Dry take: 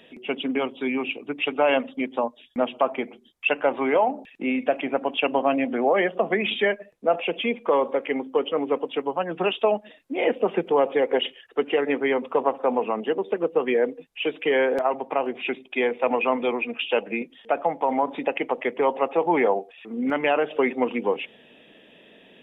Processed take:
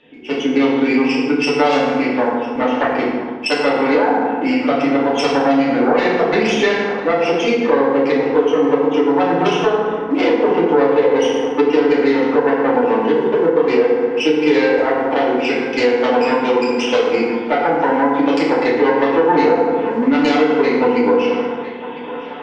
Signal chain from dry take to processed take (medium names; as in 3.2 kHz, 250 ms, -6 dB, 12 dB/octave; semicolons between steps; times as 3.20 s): self-modulated delay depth 0.22 ms; in parallel at -10 dB: small samples zeroed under -34.5 dBFS; on the sum: level rider gain up to 11.5 dB; on a send: band-passed feedback delay 1003 ms, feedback 60%, band-pass 1.1 kHz, level -15.5 dB; on the sum: FDN reverb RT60 1.3 s, low-frequency decay 1.45×, high-frequency decay 0.6×, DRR -7.5 dB; compression 3:1, threshold -8 dBFS, peak gain reduction 8.5 dB; distance through air 120 m; band-stop 650 Hz, Q 13; trim -3.5 dB